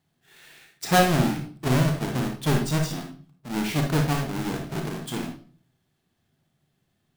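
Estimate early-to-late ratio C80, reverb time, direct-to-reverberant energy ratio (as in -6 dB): 11.5 dB, 0.45 s, 2.0 dB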